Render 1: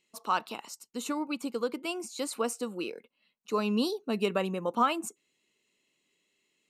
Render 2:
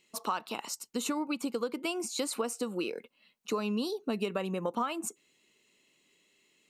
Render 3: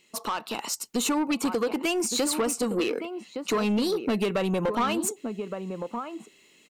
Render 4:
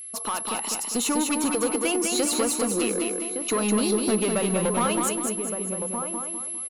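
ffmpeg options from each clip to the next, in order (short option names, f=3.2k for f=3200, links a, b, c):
-af "acompressor=threshold=-36dB:ratio=6,volume=6.5dB"
-filter_complex "[0:a]asplit=2[a][b];[b]adelay=1166,volume=-10dB,highshelf=f=4k:g=-26.2[c];[a][c]amix=inputs=2:normalize=0,asoftclip=type=tanh:threshold=-30.5dB,dynaudnorm=f=450:g=3:m=4dB,volume=6.5dB"
-af "aeval=exprs='val(0)+0.0158*sin(2*PI*11000*n/s)':c=same,aecho=1:1:201|402|603|804|1005:0.631|0.252|0.101|0.0404|0.0162"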